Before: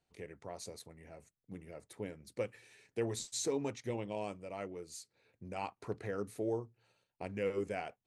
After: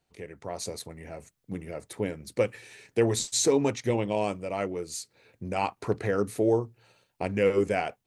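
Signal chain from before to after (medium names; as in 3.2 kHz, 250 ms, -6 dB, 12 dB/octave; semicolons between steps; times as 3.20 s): level rider gain up to 6.5 dB; trim +5.5 dB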